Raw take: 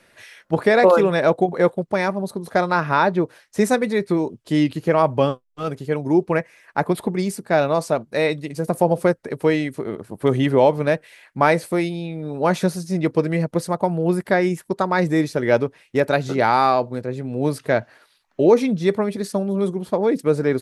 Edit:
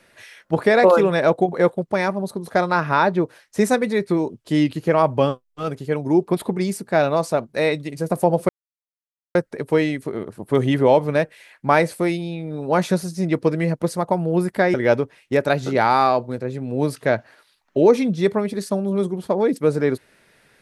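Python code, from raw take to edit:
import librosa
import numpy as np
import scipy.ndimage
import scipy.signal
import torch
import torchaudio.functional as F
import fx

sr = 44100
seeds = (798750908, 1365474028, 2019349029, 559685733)

y = fx.edit(x, sr, fx.cut(start_s=6.28, length_s=0.58),
    fx.insert_silence(at_s=9.07, length_s=0.86),
    fx.cut(start_s=14.46, length_s=0.91), tone=tone)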